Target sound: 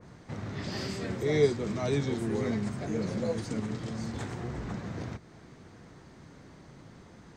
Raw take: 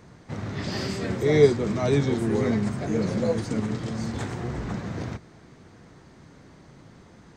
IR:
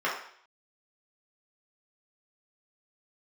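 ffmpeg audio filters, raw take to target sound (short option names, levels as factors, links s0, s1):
-filter_complex "[0:a]asplit=2[s0][s1];[s1]acompressor=threshold=0.0112:ratio=6,volume=1.12[s2];[s0][s2]amix=inputs=2:normalize=0,adynamicequalizer=threshold=0.0251:dfrequency=2100:dqfactor=0.7:tfrequency=2100:tqfactor=0.7:attack=5:release=100:ratio=0.375:range=1.5:mode=boostabove:tftype=highshelf,volume=0.398"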